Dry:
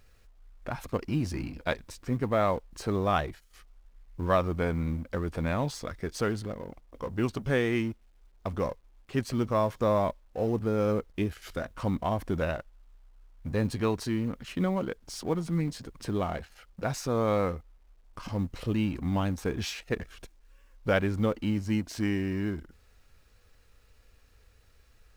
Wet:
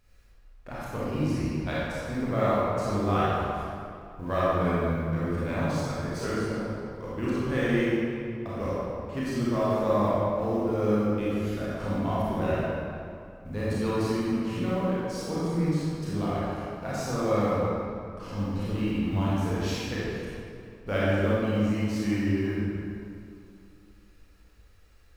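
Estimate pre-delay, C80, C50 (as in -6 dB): 26 ms, -2.5 dB, -5.5 dB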